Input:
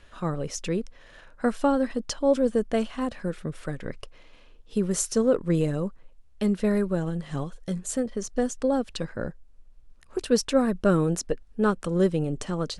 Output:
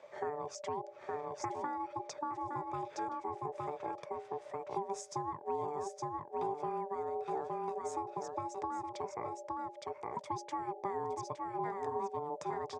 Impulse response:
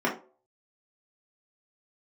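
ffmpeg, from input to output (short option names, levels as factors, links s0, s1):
-filter_complex "[0:a]bandreject=f=60:t=h:w=6,bandreject=f=120:t=h:w=6,bandreject=f=180:t=h:w=6,bandreject=f=240:t=h:w=6,asplit=2[s0][s1];[s1]aecho=0:1:865:0.501[s2];[s0][s2]amix=inputs=2:normalize=0,aeval=exprs='val(0)*sin(2*PI*590*n/s)':c=same,acompressor=threshold=0.0126:ratio=5,highpass=f=110:w=0.5412,highpass=f=110:w=1.3066,equalizer=f=220:t=q:w=4:g=-9,equalizer=f=420:t=q:w=4:g=9,equalizer=f=860:t=q:w=4:g=8,equalizer=f=2900:t=q:w=4:g=-8,equalizer=f=4200:t=q:w=4:g=-8,lowpass=f=7200:w=0.5412,lowpass=f=7200:w=1.3066,volume=0.794"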